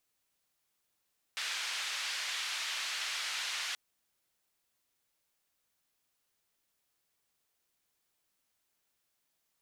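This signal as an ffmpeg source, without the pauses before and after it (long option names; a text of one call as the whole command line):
ffmpeg -f lavfi -i "anoisesrc=color=white:duration=2.38:sample_rate=44100:seed=1,highpass=frequency=1500,lowpass=frequency=4200,volume=-23.4dB" out.wav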